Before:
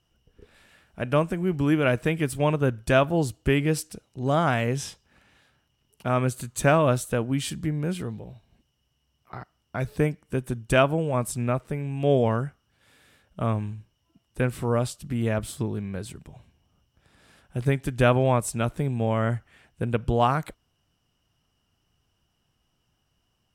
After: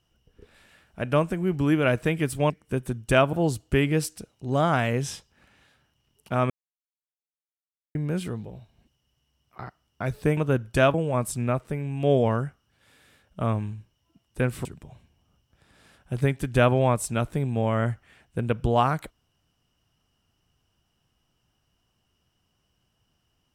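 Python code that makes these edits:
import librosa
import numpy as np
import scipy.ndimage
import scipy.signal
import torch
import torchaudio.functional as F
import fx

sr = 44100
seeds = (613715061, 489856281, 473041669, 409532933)

y = fx.edit(x, sr, fx.swap(start_s=2.5, length_s=0.57, other_s=10.11, other_length_s=0.83),
    fx.silence(start_s=6.24, length_s=1.45),
    fx.cut(start_s=14.65, length_s=1.44), tone=tone)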